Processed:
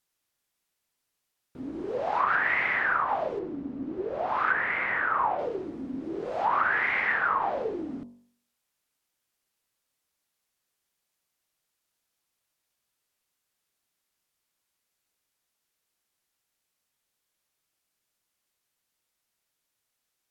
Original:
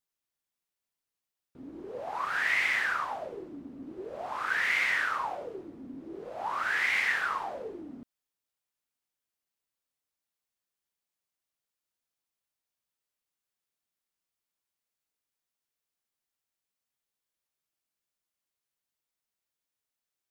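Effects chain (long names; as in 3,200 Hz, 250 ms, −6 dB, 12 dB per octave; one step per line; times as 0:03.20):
0:03.39–0:05.39: low-pass filter 2,200 Hz 6 dB per octave
treble cut that deepens with the level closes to 1,300 Hz, closed at −27.5 dBFS
hum removal 47.89 Hz, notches 25
level +9 dB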